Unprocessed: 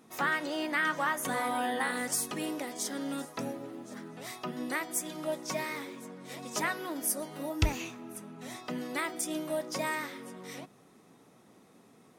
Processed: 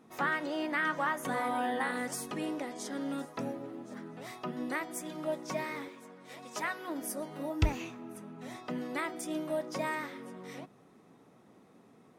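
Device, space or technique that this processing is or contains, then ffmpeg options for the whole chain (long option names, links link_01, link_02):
through cloth: -filter_complex "[0:a]highshelf=frequency=4400:gain=5,asettb=1/sr,asplit=3[link_01][link_02][link_03];[link_01]atrim=end=2.374[link_04];[link_02]atrim=start=2.37:end=2.92,asetpts=PTS-STARTPTS,afade=type=in:duration=0.004:curve=qsin,afade=type=out:start_time=0.546:duration=0.004:curve=qsin,lowpass=11000[link_05];[link_03]atrim=start=2.916[link_06];[link_04][link_05]acrossfade=duration=0.004:curve1=hsin:curve2=qsin[link_07];[link_07][link_06]acrossfade=duration=0.004:curve1=qsin:curve2=hsin,highshelf=frequency=3700:gain=-15,asettb=1/sr,asplit=3[link_08][link_09][link_10];[link_08]atrim=end=5.884[link_11];[link_09]atrim=start=5.88:end=6.88,asetpts=PTS-STARTPTS,afade=type=in:duration=0.004:curve=qsin,afade=type=out:start_time=0.996:duration=0.004:curve=qsin,lowshelf=frequency=440:gain=-10.5[link_12];[link_10]atrim=start=6.876[link_13];[link_11][link_12]acrossfade=duration=0.004:curve1=hsin:curve2=qsin[link_14];[link_14][link_13]acrossfade=duration=0.004:curve1=qsin:curve2=hsin"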